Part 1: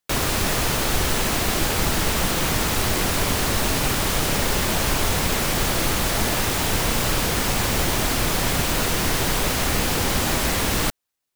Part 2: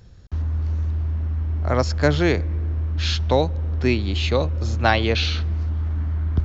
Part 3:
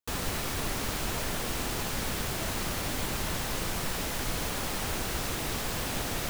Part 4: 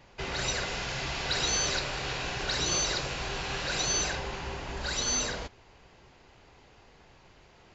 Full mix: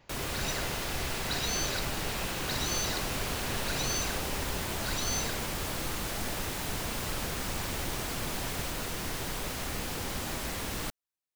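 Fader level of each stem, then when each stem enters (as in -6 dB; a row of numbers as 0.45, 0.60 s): -13.5 dB, off, -9.0 dB, -5.0 dB; 0.00 s, off, 2.40 s, 0.00 s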